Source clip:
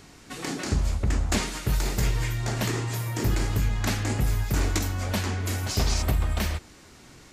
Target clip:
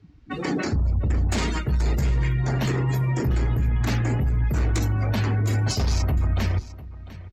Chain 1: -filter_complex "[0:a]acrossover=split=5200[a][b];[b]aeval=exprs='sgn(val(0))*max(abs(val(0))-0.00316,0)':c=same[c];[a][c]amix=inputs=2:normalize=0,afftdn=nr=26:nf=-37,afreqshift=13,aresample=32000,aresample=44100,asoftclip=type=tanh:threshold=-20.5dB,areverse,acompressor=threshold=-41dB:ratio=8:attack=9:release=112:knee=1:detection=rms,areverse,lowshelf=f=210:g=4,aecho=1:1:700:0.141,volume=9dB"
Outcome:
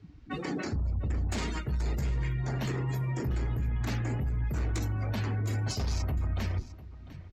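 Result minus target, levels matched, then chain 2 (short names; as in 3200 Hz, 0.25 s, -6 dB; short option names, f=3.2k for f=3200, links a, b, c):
compressor: peak gain reduction +8.5 dB
-filter_complex "[0:a]acrossover=split=5200[a][b];[b]aeval=exprs='sgn(val(0))*max(abs(val(0))-0.00316,0)':c=same[c];[a][c]amix=inputs=2:normalize=0,afftdn=nr=26:nf=-37,afreqshift=13,aresample=32000,aresample=44100,asoftclip=type=tanh:threshold=-20.5dB,areverse,acompressor=threshold=-31.5dB:ratio=8:attack=9:release=112:knee=1:detection=rms,areverse,lowshelf=f=210:g=4,aecho=1:1:700:0.141,volume=9dB"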